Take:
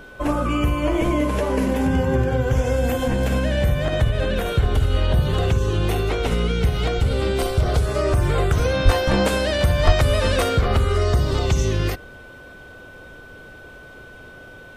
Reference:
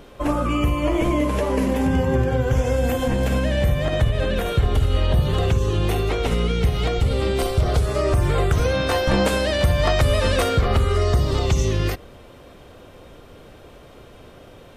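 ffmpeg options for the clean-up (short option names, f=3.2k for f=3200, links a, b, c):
-filter_complex "[0:a]bandreject=f=1.5k:w=30,asplit=3[a][b][c];[a]afade=t=out:st=8.84:d=0.02[d];[b]highpass=f=140:w=0.5412,highpass=f=140:w=1.3066,afade=t=in:st=8.84:d=0.02,afade=t=out:st=8.96:d=0.02[e];[c]afade=t=in:st=8.96:d=0.02[f];[d][e][f]amix=inputs=3:normalize=0,asplit=3[g][h][i];[g]afade=t=out:st=9.85:d=0.02[j];[h]highpass=f=140:w=0.5412,highpass=f=140:w=1.3066,afade=t=in:st=9.85:d=0.02,afade=t=out:st=9.97:d=0.02[k];[i]afade=t=in:st=9.97:d=0.02[l];[j][k][l]amix=inputs=3:normalize=0"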